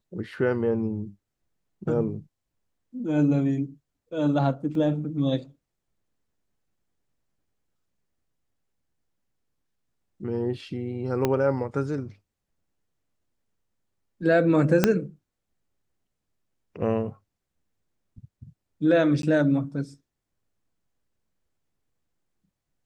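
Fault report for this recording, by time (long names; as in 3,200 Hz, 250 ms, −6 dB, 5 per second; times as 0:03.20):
0:04.75: drop-out 2.1 ms
0:11.25: click −10 dBFS
0:14.84: click −4 dBFS
0:19.22–0:19.23: drop-out 12 ms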